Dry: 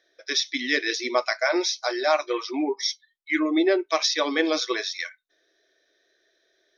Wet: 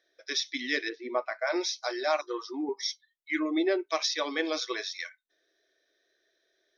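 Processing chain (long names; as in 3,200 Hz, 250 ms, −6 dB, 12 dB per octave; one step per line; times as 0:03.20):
0:00.88–0:01.46: low-pass filter 1,100 Hz → 1,900 Hz 12 dB per octave
0:02.21–0:02.69: phaser with its sweep stopped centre 630 Hz, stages 6
0:04.16–0:04.78: low-shelf EQ 180 Hz −9.5 dB
level −6 dB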